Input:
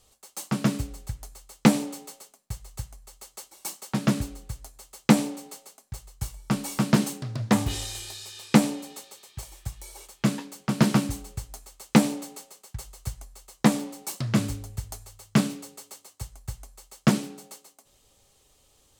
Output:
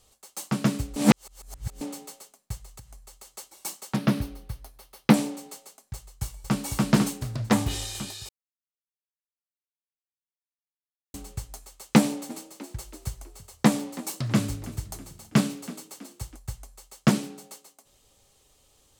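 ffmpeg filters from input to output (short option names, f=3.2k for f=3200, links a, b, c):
-filter_complex "[0:a]asettb=1/sr,asplit=3[a][b][c];[a]atrim=end=2.654[d];[b]atrim=start=2.65:end=3.29,asetpts=PTS-STARTPTS,afade=t=in:d=0.004:c=qsin,afade=t=out:st=0.636:d=0.004:c=qsin,acompressor=threshold=-41dB:ratio=10:attack=3.2:release=140:knee=1:detection=peak[e];[c]atrim=start=3.286[f];[d][e]acrossfade=d=0.004:c1=hsin:c2=qsin[g];[g][f]acrossfade=d=0.004:c1=qsin:c2=hsin,asettb=1/sr,asplit=3[h][i][j];[h]atrim=end=3.964[k];[i]atrim=start=3.96:end=5.14,asetpts=PTS-STARTPTS,afade=t=in:d=0.004:c=qsin,afade=t=out:st=1.176:d=0.004:c=qsin,equalizer=f=7.4k:t=o:w=0.51:g=-14.5[l];[j]atrim=start=5.136[m];[k][l]acrossfade=d=0.004:c1=hsin:c2=qsin[n];[n][m]acrossfade=d=0.004:c1=qsin:c2=hsin,asplit=2[o][p];[p]afade=t=in:st=5.94:d=0.01,afade=t=out:st=6.6:d=0.01,aecho=0:1:500|1000|1500|2000|2500|3000|3500|4000|4500:0.707946|0.424767|0.25486|0.152916|0.0917498|0.0550499|0.0330299|0.019818|0.0118908[q];[o][q]amix=inputs=2:normalize=0,asplit=3[r][s][t];[r]afade=t=out:st=12.29:d=0.02[u];[s]asplit=5[v][w][x][y][z];[w]adelay=325,afreqshift=33,volume=-18dB[aa];[x]adelay=650,afreqshift=66,volume=-24.4dB[ab];[y]adelay=975,afreqshift=99,volume=-30.8dB[ac];[z]adelay=1300,afreqshift=132,volume=-37.1dB[ad];[v][aa][ab][ac][ad]amix=inputs=5:normalize=0,afade=t=in:st=12.29:d=0.02,afade=t=out:st=16.35:d=0.02[ae];[t]afade=t=in:st=16.35:d=0.02[af];[u][ae][af]amix=inputs=3:normalize=0,asplit=5[ag][ah][ai][aj][ak];[ag]atrim=end=0.962[al];[ah]atrim=start=0.958:end=1.812,asetpts=PTS-STARTPTS,areverse[am];[ai]atrim=start=1.808:end=8.29,asetpts=PTS-STARTPTS,afade=t=out:st=6.478:d=0.004:c=hsin[an];[aj]atrim=start=8.29:end=11.14,asetpts=PTS-STARTPTS,volume=0[ao];[ak]atrim=start=11.14,asetpts=PTS-STARTPTS,afade=t=in:d=0.004:c=hsin[ap];[al][am]acrossfade=d=0.004:c1=hsin:c2=hsin[aq];[an][ao][ap]concat=n=3:v=0:a=1[ar];[aq][ar]acrossfade=d=0.004:c1=hsin:c2=hsin"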